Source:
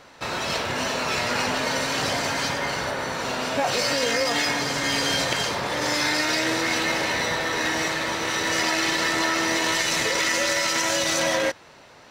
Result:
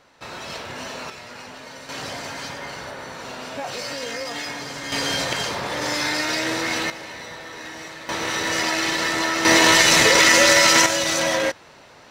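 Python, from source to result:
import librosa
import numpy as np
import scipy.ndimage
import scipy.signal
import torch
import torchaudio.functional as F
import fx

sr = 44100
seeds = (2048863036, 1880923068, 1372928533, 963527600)

y = fx.gain(x, sr, db=fx.steps((0.0, -7.0), (1.1, -14.5), (1.89, -7.0), (4.92, -0.5), (6.9, -11.5), (8.09, 0.5), (9.45, 9.0), (10.86, 1.5)))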